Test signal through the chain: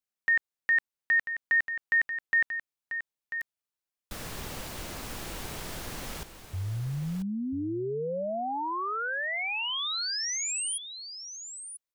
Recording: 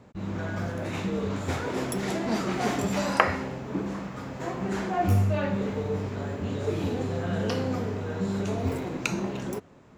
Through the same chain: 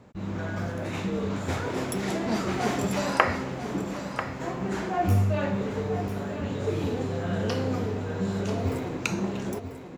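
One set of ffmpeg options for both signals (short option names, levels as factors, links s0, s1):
-af "aecho=1:1:991:0.316"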